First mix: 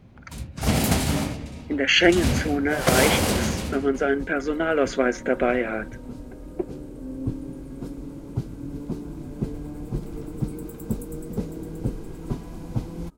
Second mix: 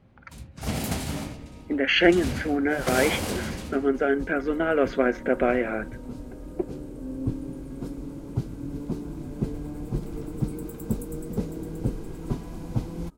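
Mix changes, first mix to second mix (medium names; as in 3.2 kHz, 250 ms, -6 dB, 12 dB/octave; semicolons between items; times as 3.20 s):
speech: add distance through air 230 m; first sound -7.5 dB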